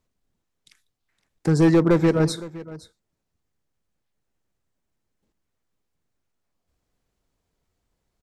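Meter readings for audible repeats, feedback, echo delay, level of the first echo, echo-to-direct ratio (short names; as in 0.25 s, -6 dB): 1, no steady repeat, 0.514 s, -18.0 dB, -18.0 dB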